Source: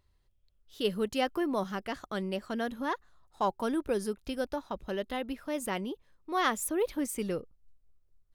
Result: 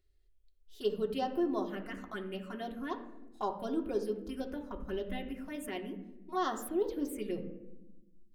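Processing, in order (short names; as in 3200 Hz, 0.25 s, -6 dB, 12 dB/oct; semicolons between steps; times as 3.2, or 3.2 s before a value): 4.7–5.16 low shelf 200 Hz +8.5 dB; envelope phaser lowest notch 160 Hz, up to 2300 Hz, full sweep at -26.5 dBFS; reverb RT60 0.95 s, pre-delay 3 ms, DRR 1.5 dB; gain -5.5 dB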